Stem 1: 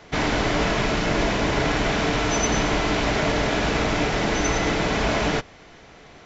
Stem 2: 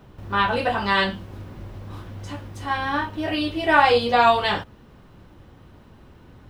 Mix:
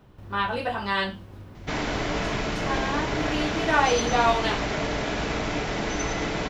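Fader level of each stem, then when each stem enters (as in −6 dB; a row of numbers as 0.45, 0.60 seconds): −5.5, −5.5 decibels; 1.55, 0.00 seconds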